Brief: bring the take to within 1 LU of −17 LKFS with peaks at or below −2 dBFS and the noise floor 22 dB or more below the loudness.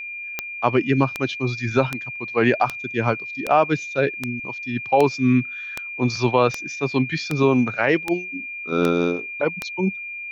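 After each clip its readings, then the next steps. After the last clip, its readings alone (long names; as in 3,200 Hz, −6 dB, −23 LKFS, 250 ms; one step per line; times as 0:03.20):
number of clicks 13; interfering tone 2,400 Hz; level of the tone −30 dBFS; integrated loudness −22.0 LKFS; sample peak −4.0 dBFS; target loudness −17.0 LKFS
→ click removal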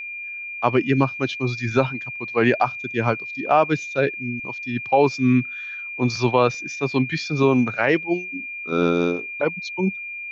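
number of clicks 0; interfering tone 2,400 Hz; level of the tone −30 dBFS
→ notch filter 2,400 Hz, Q 30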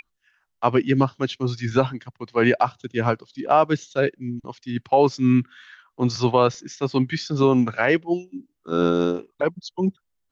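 interfering tone none found; integrated loudness −22.5 LKFS; sample peak −4.5 dBFS; target loudness −17.0 LKFS
→ level +5.5 dB
brickwall limiter −2 dBFS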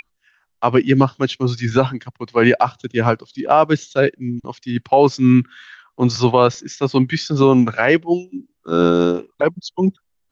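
integrated loudness −17.5 LKFS; sample peak −2.0 dBFS; background noise floor −70 dBFS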